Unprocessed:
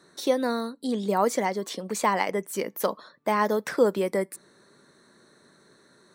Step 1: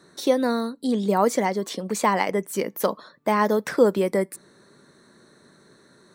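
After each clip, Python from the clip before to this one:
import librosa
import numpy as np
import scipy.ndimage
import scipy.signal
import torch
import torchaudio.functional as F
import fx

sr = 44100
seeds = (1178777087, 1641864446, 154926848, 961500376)

y = fx.low_shelf(x, sr, hz=280.0, db=5.0)
y = F.gain(torch.from_numpy(y), 2.0).numpy()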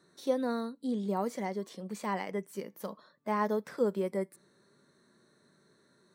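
y = fx.hpss(x, sr, part='percussive', gain_db=-10)
y = F.gain(torch.from_numpy(y), -9.0).numpy()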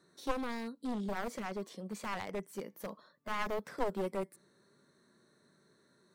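y = np.minimum(x, 2.0 * 10.0 ** (-31.0 / 20.0) - x)
y = F.gain(torch.from_numpy(y), -2.0).numpy()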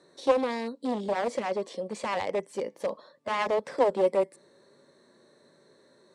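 y = fx.cabinet(x, sr, low_hz=100.0, low_slope=12, high_hz=8700.0, hz=(130.0, 190.0, 540.0, 840.0, 1400.0, 6300.0), db=(-5, -8, 9, 3, -7, -4))
y = F.gain(torch.from_numpy(y), 8.0).numpy()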